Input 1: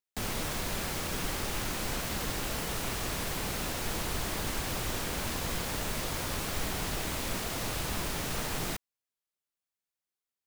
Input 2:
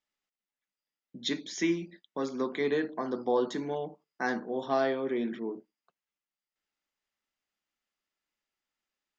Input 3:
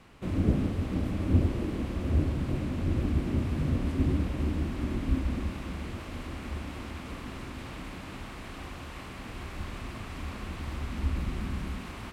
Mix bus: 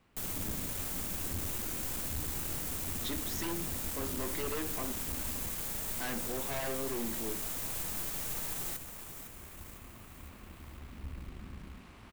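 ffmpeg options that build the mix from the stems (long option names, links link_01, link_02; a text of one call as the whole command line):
ffmpeg -i stem1.wav -i stem2.wav -i stem3.wav -filter_complex "[0:a]aexciter=amount=3:drive=6.3:freq=6700,volume=-5.5dB,asplit=2[link_01][link_02];[link_02]volume=-12dB[link_03];[1:a]aeval=exprs='0.0473*(abs(mod(val(0)/0.0473+3,4)-2)-1)':channel_layout=same,adelay=1800,volume=1.5dB,asplit=3[link_04][link_05][link_06];[link_04]atrim=end=4.92,asetpts=PTS-STARTPTS,afade=type=out:start_time=4.916:duration=0.004:curve=hsin[link_07];[link_05]atrim=start=4.92:end=5.97,asetpts=PTS-STARTPTS,volume=0[link_08];[link_06]atrim=start=5.97,asetpts=PTS-STARTPTS,afade=type=in:duration=0.004:curve=hsin[link_09];[link_07][link_08][link_09]concat=n=3:v=0:a=1[link_10];[2:a]volume=-10dB[link_11];[link_03]aecho=0:1:506|1012|1518|2024|2530|3036|3542|4048:1|0.55|0.303|0.166|0.0915|0.0503|0.0277|0.0152[link_12];[link_01][link_10][link_11][link_12]amix=inputs=4:normalize=0,aeval=exprs='(tanh(44.7*val(0)+0.6)-tanh(0.6))/44.7':channel_layout=same" out.wav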